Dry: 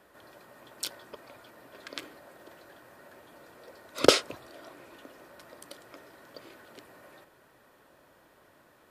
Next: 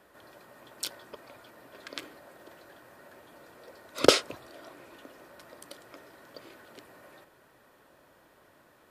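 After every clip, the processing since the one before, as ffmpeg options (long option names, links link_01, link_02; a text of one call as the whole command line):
ffmpeg -i in.wav -af anull out.wav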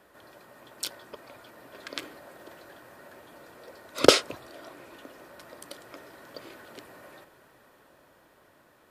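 ffmpeg -i in.wav -af "dynaudnorm=framelen=270:gausssize=13:maxgain=4dB,volume=1dB" out.wav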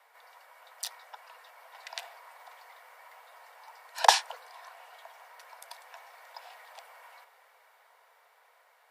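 ffmpeg -i in.wav -af "afreqshift=390,volume=-3.5dB" out.wav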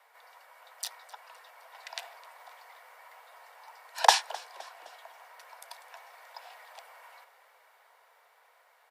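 ffmpeg -i in.wav -filter_complex "[0:a]asplit=4[link_01][link_02][link_03][link_04];[link_02]adelay=258,afreqshift=-58,volume=-21.5dB[link_05];[link_03]adelay=516,afreqshift=-116,volume=-27.7dB[link_06];[link_04]adelay=774,afreqshift=-174,volume=-33.9dB[link_07];[link_01][link_05][link_06][link_07]amix=inputs=4:normalize=0" out.wav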